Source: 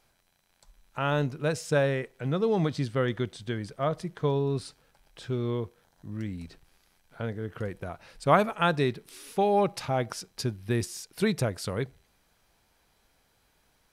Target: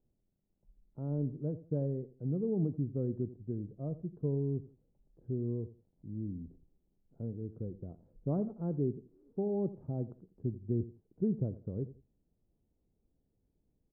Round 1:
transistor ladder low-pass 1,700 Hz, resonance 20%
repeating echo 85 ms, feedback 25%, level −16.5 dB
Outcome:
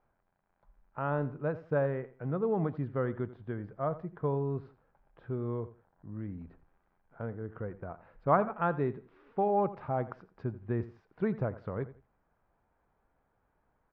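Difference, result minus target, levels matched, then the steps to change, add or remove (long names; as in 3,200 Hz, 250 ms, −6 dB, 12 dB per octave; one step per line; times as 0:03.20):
500 Hz band +3.0 dB
change: transistor ladder low-pass 450 Hz, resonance 20%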